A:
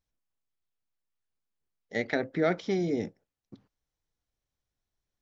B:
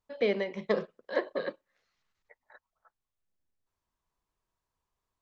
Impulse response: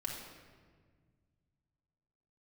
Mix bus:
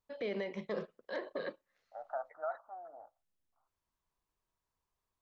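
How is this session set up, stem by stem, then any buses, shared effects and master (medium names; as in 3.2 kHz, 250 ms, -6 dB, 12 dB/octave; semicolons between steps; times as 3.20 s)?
-0.5 dB, 0.00 s, no send, elliptic high-pass 670 Hz, stop band 40 dB; gate with hold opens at -57 dBFS; steep low-pass 1.4 kHz 96 dB/octave
-3.0 dB, 0.00 s, no send, none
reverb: none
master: peak limiter -28 dBFS, peak gain reduction 10 dB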